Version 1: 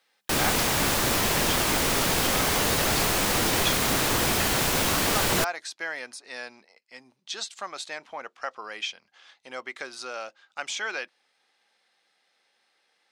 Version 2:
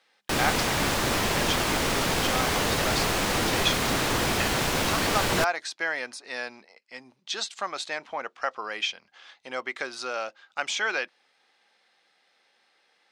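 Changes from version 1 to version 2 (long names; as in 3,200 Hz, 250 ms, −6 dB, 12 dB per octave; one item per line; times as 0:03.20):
speech +4.5 dB
master: add high-shelf EQ 8,600 Hz −10.5 dB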